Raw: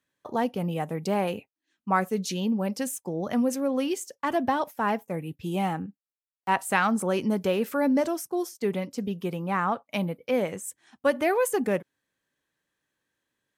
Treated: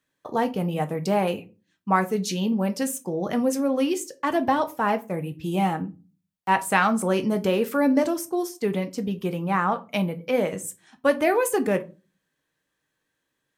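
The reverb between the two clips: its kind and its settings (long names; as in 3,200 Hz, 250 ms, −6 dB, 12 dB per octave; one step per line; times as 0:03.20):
rectangular room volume 130 cubic metres, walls furnished, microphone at 0.54 metres
level +2.5 dB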